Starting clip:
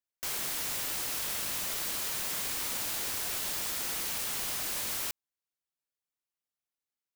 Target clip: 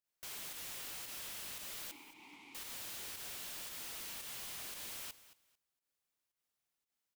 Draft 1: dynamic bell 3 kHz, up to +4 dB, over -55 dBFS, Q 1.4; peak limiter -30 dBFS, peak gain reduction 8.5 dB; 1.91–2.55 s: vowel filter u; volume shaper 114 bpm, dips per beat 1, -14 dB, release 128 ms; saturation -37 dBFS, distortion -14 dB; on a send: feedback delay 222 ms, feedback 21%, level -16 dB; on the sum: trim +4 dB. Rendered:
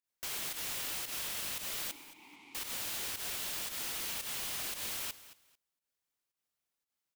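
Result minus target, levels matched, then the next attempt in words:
saturation: distortion -8 dB
dynamic bell 3 kHz, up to +4 dB, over -55 dBFS, Q 1.4; peak limiter -30 dBFS, peak gain reduction 8.5 dB; 1.91–2.55 s: vowel filter u; volume shaper 114 bpm, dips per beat 1, -14 dB, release 128 ms; saturation -48.5 dBFS, distortion -6 dB; on a send: feedback delay 222 ms, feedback 21%, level -16 dB; on the sum: trim +4 dB

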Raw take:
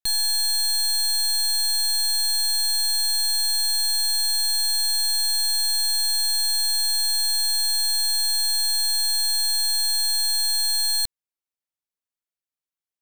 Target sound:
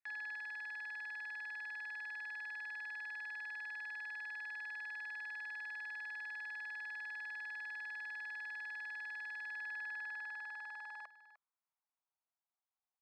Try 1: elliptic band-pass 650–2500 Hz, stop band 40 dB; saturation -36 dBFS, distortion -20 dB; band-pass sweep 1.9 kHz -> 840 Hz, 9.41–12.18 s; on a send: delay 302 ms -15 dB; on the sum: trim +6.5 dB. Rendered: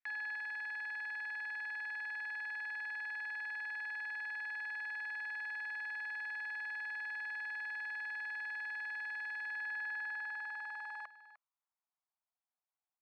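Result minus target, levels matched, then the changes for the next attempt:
saturation: distortion -10 dB
change: saturation -44.5 dBFS, distortion -10 dB

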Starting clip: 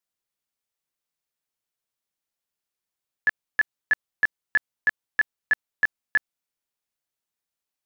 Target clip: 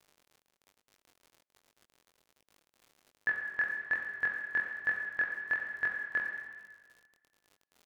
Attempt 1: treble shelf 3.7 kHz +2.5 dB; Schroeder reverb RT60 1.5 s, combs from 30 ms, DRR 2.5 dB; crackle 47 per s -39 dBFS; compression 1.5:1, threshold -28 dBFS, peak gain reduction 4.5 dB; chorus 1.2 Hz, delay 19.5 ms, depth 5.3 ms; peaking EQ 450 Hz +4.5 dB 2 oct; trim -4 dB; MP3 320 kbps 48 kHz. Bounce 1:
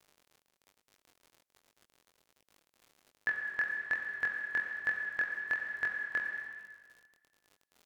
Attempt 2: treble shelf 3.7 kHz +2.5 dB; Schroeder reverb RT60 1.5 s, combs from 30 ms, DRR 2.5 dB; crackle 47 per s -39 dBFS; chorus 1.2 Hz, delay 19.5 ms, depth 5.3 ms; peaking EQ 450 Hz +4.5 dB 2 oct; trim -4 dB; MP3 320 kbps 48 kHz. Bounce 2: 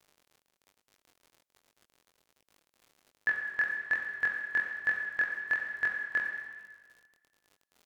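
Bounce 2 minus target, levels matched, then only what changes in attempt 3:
4 kHz band +2.5 dB
change: treble shelf 3.7 kHz -9 dB

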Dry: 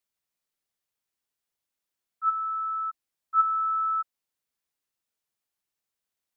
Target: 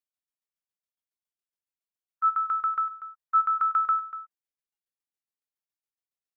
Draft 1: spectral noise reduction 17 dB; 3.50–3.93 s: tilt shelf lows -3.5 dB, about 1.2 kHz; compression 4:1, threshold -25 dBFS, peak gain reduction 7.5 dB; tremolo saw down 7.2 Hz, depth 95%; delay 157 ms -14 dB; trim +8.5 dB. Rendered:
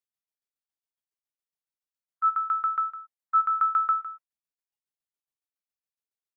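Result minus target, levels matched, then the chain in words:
echo 83 ms early
spectral noise reduction 17 dB; 3.50–3.93 s: tilt shelf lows -3.5 dB, about 1.2 kHz; compression 4:1, threshold -25 dBFS, peak gain reduction 7.5 dB; tremolo saw down 7.2 Hz, depth 95%; delay 240 ms -14 dB; trim +8.5 dB

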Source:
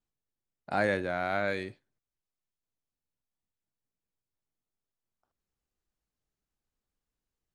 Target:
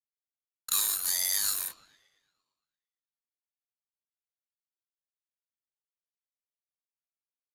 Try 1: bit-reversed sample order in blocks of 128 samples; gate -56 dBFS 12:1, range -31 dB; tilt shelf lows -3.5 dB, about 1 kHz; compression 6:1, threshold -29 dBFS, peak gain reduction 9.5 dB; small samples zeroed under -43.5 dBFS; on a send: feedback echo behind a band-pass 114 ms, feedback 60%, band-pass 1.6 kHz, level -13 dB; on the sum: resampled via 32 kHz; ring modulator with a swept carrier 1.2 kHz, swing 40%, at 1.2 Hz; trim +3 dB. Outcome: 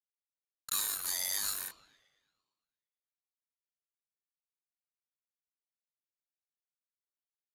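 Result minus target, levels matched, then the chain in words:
2 kHz band +3.0 dB
bit-reversed sample order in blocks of 128 samples; gate -56 dBFS 12:1, range -31 dB; tilt shelf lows -3.5 dB, about 1 kHz; compression 6:1, threshold -29 dBFS, peak gain reduction 9.5 dB; treble shelf 2.5 kHz +6.5 dB; small samples zeroed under -43.5 dBFS; on a send: feedback echo behind a band-pass 114 ms, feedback 60%, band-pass 1.6 kHz, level -13 dB; on the sum: resampled via 32 kHz; ring modulator with a swept carrier 1.2 kHz, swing 40%, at 1.2 Hz; trim +3 dB

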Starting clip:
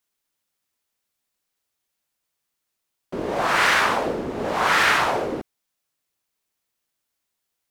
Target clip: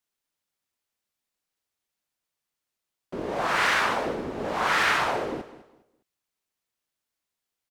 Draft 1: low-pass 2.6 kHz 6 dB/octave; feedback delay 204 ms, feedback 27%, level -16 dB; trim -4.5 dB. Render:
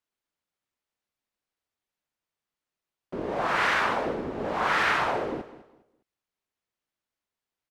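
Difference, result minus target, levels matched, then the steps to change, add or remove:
8 kHz band -6.0 dB
change: low-pass 10 kHz 6 dB/octave

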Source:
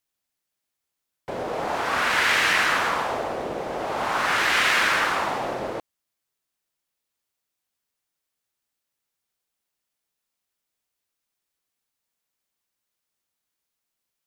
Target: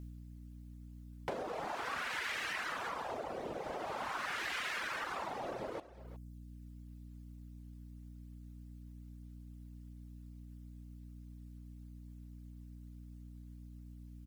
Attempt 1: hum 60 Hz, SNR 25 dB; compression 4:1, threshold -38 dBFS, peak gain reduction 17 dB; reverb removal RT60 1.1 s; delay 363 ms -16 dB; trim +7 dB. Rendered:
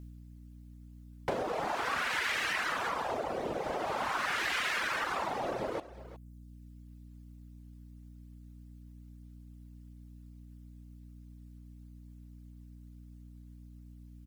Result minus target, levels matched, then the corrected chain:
compression: peak gain reduction -6.5 dB
hum 60 Hz, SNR 25 dB; compression 4:1, threshold -46.5 dBFS, peak gain reduction 23.5 dB; reverb removal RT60 1.1 s; delay 363 ms -16 dB; trim +7 dB

